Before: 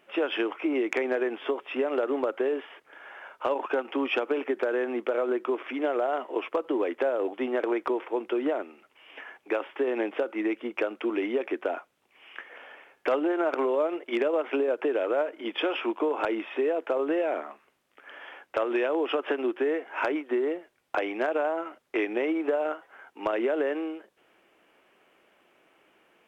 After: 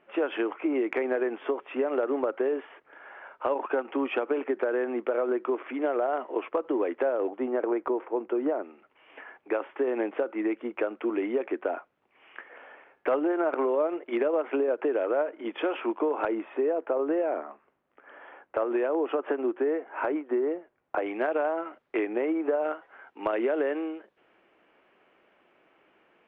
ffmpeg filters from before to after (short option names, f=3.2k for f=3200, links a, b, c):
-af "asetnsamples=n=441:p=0,asendcmd='7.3 lowpass f 1300;8.64 lowpass f 1900;16.28 lowpass f 1400;21.06 lowpass f 2400;21.99 lowpass f 1700;22.64 lowpass f 2700',lowpass=2k"